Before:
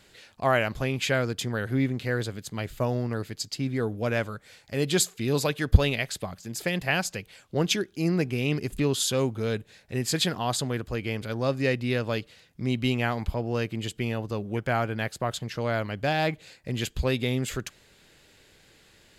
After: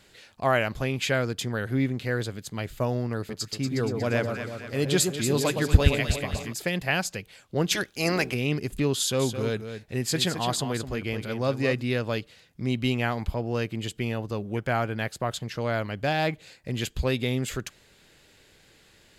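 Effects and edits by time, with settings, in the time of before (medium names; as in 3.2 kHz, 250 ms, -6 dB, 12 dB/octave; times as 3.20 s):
3.17–6.53 s: echo whose repeats swap between lows and highs 118 ms, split 1.1 kHz, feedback 72%, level -4 dB
7.71–8.33 s: spectral peaks clipped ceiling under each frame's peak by 19 dB
8.98–11.82 s: delay 214 ms -9 dB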